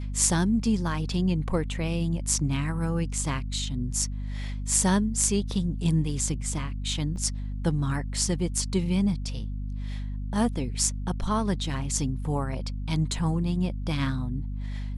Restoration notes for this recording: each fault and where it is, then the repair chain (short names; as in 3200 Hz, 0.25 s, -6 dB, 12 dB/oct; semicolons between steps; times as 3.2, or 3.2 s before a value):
hum 50 Hz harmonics 5 -32 dBFS
7.16 gap 3.6 ms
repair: de-hum 50 Hz, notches 5; interpolate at 7.16, 3.6 ms